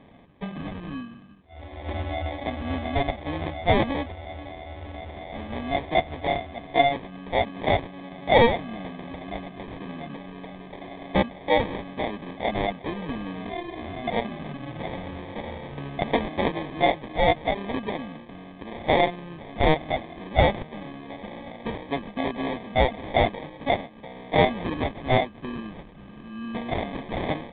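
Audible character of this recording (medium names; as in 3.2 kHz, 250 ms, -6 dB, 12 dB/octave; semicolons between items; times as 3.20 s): aliases and images of a low sample rate 1.4 kHz, jitter 0%; µ-law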